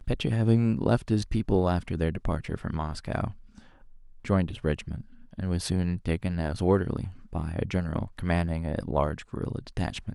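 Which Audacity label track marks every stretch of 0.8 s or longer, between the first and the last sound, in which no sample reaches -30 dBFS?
3.300000	4.250000	silence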